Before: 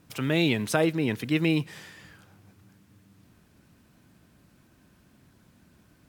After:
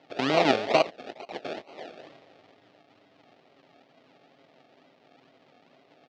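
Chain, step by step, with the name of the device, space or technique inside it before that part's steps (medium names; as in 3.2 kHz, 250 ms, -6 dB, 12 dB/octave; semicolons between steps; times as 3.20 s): 0.81–1.79 s: steep high-pass 2.6 kHz 72 dB/octave; comb 7.4 ms, depth 70%; circuit-bent sampling toy (decimation with a swept rate 35×, swing 60% 2.2 Hz; cabinet simulation 440–4500 Hz, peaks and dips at 660 Hz +5 dB, 1 kHz -7 dB, 1.5 kHz -6 dB); trim +6 dB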